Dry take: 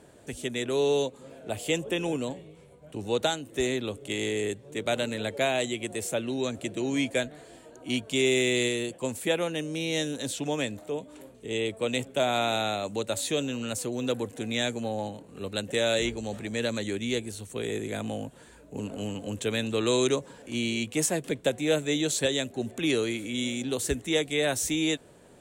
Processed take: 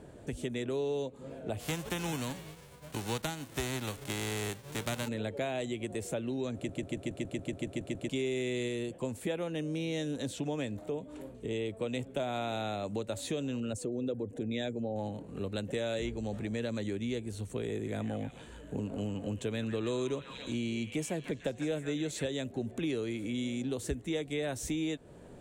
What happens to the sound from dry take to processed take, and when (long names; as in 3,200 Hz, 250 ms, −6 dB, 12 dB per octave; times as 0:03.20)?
0:01.59–0:05.07: spectral envelope flattened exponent 0.3
0:06.55: stutter in place 0.14 s, 11 plays
0:13.60–0:14.96: spectral envelope exaggerated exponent 1.5
0:17.71–0:22.23: echo through a band-pass that steps 149 ms, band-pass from 1,400 Hz, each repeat 0.7 octaves, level −4.5 dB
whole clip: spectral tilt −2 dB per octave; downward compressor 3 to 1, threshold −34 dBFS